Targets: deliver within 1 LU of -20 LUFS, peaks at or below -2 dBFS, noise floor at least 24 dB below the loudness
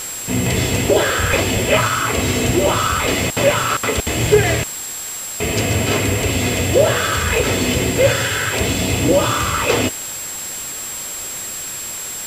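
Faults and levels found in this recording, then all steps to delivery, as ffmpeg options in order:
steady tone 7600 Hz; tone level -27 dBFS; noise floor -28 dBFS; noise floor target -42 dBFS; loudness -17.5 LUFS; peak -2.0 dBFS; loudness target -20.0 LUFS
-> -af "bandreject=f=7.6k:w=30"
-af "afftdn=nr=14:nf=-28"
-af "volume=-2.5dB"

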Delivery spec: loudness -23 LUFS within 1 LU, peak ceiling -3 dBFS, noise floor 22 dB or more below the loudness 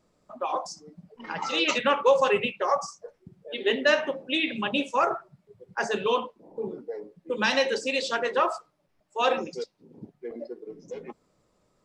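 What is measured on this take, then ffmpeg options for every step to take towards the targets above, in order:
loudness -26.5 LUFS; peak -9.5 dBFS; loudness target -23.0 LUFS
-> -af "volume=3.5dB"

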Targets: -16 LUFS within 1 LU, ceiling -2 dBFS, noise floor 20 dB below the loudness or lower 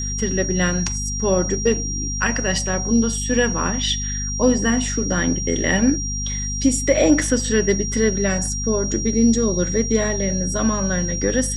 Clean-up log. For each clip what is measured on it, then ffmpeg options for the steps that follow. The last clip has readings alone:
hum 50 Hz; harmonics up to 250 Hz; hum level -24 dBFS; steady tone 5700 Hz; tone level -26 dBFS; loudness -19.5 LUFS; peak -4.5 dBFS; loudness target -16.0 LUFS
-> -af "bandreject=f=50:t=h:w=4,bandreject=f=100:t=h:w=4,bandreject=f=150:t=h:w=4,bandreject=f=200:t=h:w=4,bandreject=f=250:t=h:w=4"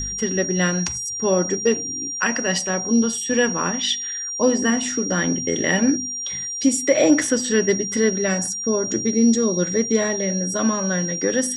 hum none; steady tone 5700 Hz; tone level -26 dBFS
-> -af "bandreject=f=5.7k:w=30"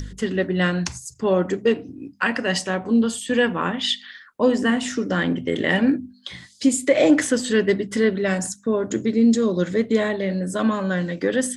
steady tone none; loudness -21.5 LUFS; peak -5.5 dBFS; loudness target -16.0 LUFS
-> -af "volume=5.5dB,alimiter=limit=-2dB:level=0:latency=1"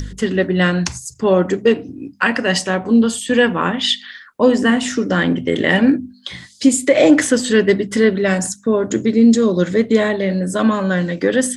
loudness -16.0 LUFS; peak -2.0 dBFS; noise floor -44 dBFS

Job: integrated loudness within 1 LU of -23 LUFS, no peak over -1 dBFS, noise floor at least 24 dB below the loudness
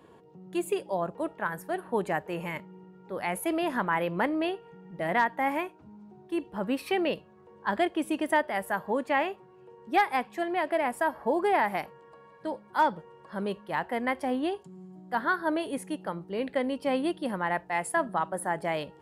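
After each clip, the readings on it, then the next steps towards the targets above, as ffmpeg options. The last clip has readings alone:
loudness -30.0 LUFS; peak -14.5 dBFS; loudness target -23.0 LUFS
-> -af "volume=7dB"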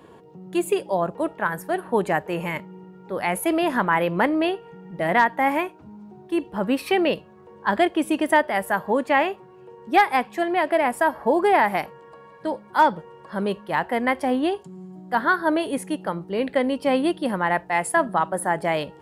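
loudness -23.0 LUFS; peak -7.5 dBFS; noise floor -48 dBFS

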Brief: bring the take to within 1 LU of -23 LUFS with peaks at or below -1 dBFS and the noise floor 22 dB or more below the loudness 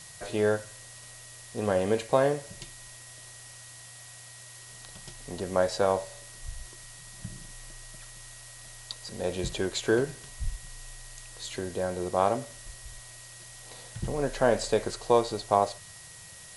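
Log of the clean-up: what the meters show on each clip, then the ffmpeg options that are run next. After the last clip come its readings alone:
steady tone 1900 Hz; tone level -55 dBFS; noise floor -48 dBFS; noise floor target -51 dBFS; loudness -29.0 LUFS; peak -8.5 dBFS; loudness target -23.0 LUFS
-> -af "bandreject=f=1.9k:w=30"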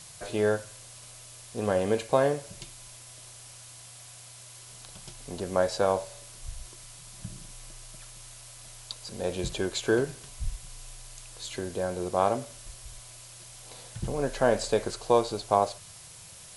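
steady tone none; noise floor -48 dBFS; noise floor target -51 dBFS
-> -af "afftdn=nr=6:nf=-48"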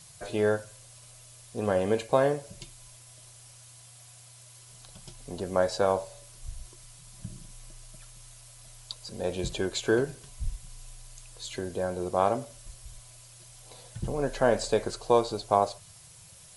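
noise floor -52 dBFS; loudness -29.0 LUFS; peak -8.5 dBFS; loudness target -23.0 LUFS
-> -af "volume=6dB"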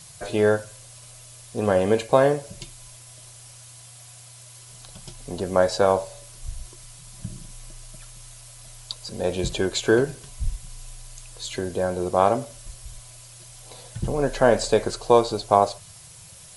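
loudness -23.0 LUFS; peak -2.5 dBFS; noise floor -46 dBFS

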